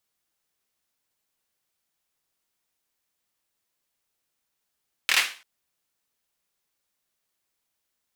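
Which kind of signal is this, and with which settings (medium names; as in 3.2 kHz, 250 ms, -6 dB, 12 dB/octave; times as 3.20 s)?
hand clap length 0.34 s, apart 25 ms, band 2.3 kHz, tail 0.37 s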